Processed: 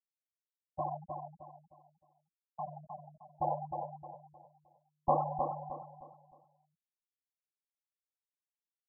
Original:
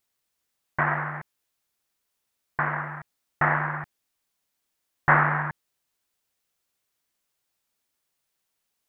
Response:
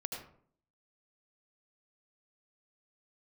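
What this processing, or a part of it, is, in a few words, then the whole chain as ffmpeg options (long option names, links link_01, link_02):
under water: -filter_complex "[0:a]lowpass=frequency=850:width=0.5412,lowpass=frequency=850:width=1.3066,equalizer=frequency=640:width_type=o:width=0.44:gain=5.5,asplit=3[link_01][link_02][link_03];[link_01]afade=type=out:start_time=1.03:duration=0.02[link_04];[link_02]highpass=160,afade=type=in:start_time=1.03:duration=0.02,afade=type=out:start_time=2.66:duration=0.02[link_05];[link_03]afade=type=in:start_time=2.66:duration=0.02[link_06];[link_04][link_05][link_06]amix=inputs=3:normalize=0,afftfilt=real='re*gte(hypot(re,im),0.126)':imag='im*gte(hypot(re,im),0.126)':win_size=1024:overlap=0.75,aecho=1:1:3.8:0.96,asplit=2[link_07][link_08];[link_08]adelay=309,lowpass=frequency=2300:poles=1,volume=-5.5dB,asplit=2[link_09][link_10];[link_10]adelay=309,lowpass=frequency=2300:poles=1,volume=0.34,asplit=2[link_11][link_12];[link_12]adelay=309,lowpass=frequency=2300:poles=1,volume=0.34,asplit=2[link_13][link_14];[link_14]adelay=309,lowpass=frequency=2300:poles=1,volume=0.34[link_15];[link_07][link_09][link_11][link_13][link_15]amix=inputs=5:normalize=0,volume=-7dB"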